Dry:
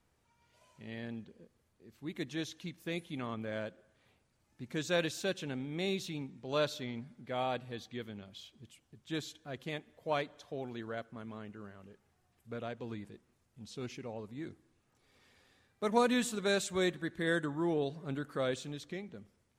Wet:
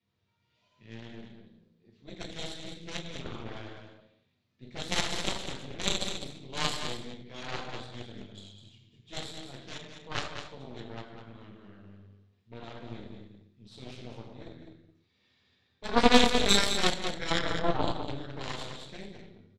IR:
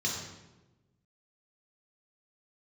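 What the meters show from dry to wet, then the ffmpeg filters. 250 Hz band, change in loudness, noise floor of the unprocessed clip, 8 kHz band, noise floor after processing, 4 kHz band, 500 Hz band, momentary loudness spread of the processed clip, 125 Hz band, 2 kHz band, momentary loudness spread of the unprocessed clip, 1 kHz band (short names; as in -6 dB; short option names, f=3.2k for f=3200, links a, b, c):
+2.5 dB, +6.5 dB, -75 dBFS, +8.0 dB, -74 dBFS, +11.0 dB, +1.0 dB, 23 LU, +2.0 dB, +4.5 dB, 16 LU, +6.5 dB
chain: -filter_complex "[0:a]asplit=2[a][b];[b]aeval=exprs='clip(val(0),-1,0.0398)':c=same,volume=-9.5dB[c];[a][c]amix=inputs=2:normalize=0,lowpass=f=3.8k:t=q:w=2.3[d];[1:a]atrim=start_sample=2205,afade=t=out:st=0.44:d=0.01,atrim=end_sample=19845[e];[d][e]afir=irnorm=-1:irlink=0,aeval=exprs='0.562*(cos(1*acos(clip(val(0)/0.562,-1,1)))-cos(1*PI/2))+0.178*(cos(3*acos(clip(val(0)/0.562,-1,1)))-cos(3*PI/2))+0.0891*(cos(4*acos(clip(val(0)/0.562,-1,1)))-cos(4*PI/2))+0.00708*(cos(5*acos(clip(val(0)/0.562,-1,1)))-cos(5*PI/2))+0.02*(cos(7*acos(clip(val(0)/0.562,-1,1)))-cos(7*PI/2))':c=same,aecho=1:1:204:0.398,volume=1.5dB"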